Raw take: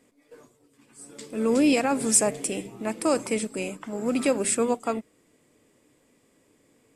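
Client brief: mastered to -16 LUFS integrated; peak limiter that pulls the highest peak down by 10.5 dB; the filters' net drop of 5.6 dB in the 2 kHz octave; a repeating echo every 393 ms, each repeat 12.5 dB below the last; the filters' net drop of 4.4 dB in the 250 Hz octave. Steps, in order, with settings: peaking EQ 250 Hz -5 dB; peaking EQ 2 kHz -7.5 dB; peak limiter -18.5 dBFS; feedback delay 393 ms, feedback 24%, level -12.5 dB; trim +14 dB

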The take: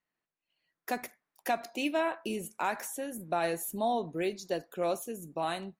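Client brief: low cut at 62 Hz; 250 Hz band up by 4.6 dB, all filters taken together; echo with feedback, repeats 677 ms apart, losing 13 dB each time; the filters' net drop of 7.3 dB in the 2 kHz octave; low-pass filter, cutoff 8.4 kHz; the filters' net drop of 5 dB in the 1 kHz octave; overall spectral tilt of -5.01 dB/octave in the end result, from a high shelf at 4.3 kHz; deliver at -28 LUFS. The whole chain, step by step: high-pass 62 Hz; low-pass 8.4 kHz; peaking EQ 250 Hz +6.5 dB; peaking EQ 1 kHz -7 dB; peaking EQ 2 kHz -8.5 dB; treble shelf 4.3 kHz +3 dB; feedback delay 677 ms, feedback 22%, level -13 dB; trim +6 dB

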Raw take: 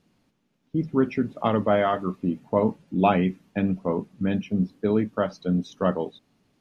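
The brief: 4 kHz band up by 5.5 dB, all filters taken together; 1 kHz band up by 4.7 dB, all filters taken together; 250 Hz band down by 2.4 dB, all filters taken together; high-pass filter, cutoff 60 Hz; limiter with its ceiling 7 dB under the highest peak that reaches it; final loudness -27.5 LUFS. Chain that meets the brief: high-pass 60 Hz; peaking EQ 250 Hz -3.5 dB; peaking EQ 1 kHz +6.5 dB; peaking EQ 4 kHz +7 dB; trim -1 dB; peak limiter -12 dBFS

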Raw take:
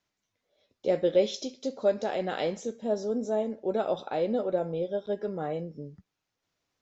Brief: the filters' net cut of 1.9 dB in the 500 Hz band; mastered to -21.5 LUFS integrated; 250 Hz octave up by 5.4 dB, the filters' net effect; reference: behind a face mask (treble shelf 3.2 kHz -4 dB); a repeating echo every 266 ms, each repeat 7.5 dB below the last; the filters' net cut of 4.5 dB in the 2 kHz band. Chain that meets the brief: peaking EQ 250 Hz +8 dB; peaking EQ 500 Hz -4 dB; peaking EQ 2 kHz -4.5 dB; treble shelf 3.2 kHz -4 dB; feedback delay 266 ms, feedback 42%, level -7.5 dB; trim +8 dB

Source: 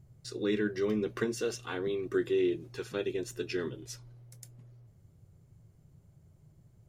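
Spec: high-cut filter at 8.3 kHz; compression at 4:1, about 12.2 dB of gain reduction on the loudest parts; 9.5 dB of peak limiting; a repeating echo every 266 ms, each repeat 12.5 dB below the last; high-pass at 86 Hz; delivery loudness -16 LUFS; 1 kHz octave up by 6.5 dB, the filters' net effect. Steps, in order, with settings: high-pass 86 Hz; low-pass 8.3 kHz; peaking EQ 1 kHz +8.5 dB; compression 4:1, threshold -39 dBFS; peak limiter -35.5 dBFS; feedback delay 266 ms, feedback 24%, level -12.5 dB; trim +29.5 dB

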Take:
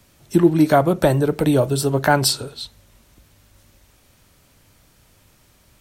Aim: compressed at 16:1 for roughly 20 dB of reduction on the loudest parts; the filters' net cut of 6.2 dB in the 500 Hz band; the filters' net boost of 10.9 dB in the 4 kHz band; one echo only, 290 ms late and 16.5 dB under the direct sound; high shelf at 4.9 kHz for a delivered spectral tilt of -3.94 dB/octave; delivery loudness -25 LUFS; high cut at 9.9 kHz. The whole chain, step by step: low-pass 9.9 kHz; peaking EQ 500 Hz -9 dB; peaking EQ 4 kHz +8.5 dB; treble shelf 4.9 kHz +9 dB; compression 16:1, threshold -25 dBFS; delay 290 ms -16.5 dB; trim +4.5 dB

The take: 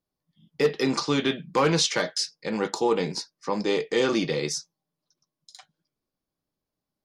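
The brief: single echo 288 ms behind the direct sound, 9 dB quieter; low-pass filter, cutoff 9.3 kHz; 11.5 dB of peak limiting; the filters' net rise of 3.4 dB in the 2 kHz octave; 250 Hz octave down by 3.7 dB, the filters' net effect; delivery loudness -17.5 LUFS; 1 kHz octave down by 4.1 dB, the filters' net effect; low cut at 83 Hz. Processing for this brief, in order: high-pass 83 Hz; low-pass 9.3 kHz; peaking EQ 250 Hz -4.5 dB; peaking EQ 1 kHz -6.5 dB; peaking EQ 2 kHz +6 dB; peak limiter -21.5 dBFS; delay 288 ms -9 dB; trim +14 dB

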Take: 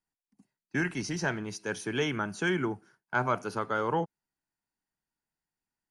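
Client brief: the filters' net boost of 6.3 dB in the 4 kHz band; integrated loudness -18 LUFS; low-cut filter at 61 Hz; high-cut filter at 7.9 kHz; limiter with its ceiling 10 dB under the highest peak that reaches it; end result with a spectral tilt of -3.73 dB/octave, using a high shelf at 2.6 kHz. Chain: high-pass 61 Hz; low-pass 7.9 kHz; treble shelf 2.6 kHz +4 dB; peaking EQ 4 kHz +5.5 dB; trim +17.5 dB; peak limiter -7.5 dBFS

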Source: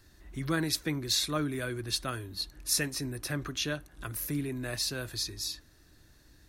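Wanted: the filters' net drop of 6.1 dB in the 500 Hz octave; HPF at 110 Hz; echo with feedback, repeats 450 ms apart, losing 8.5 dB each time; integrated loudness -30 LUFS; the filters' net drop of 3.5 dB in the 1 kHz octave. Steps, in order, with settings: high-pass 110 Hz; peaking EQ 500 Hz -7.5 dB; peaking EQ 1 kHz -3.5 dB; feedback delay 450 ms, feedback 38%, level -8.5 dB; trim +3 dB

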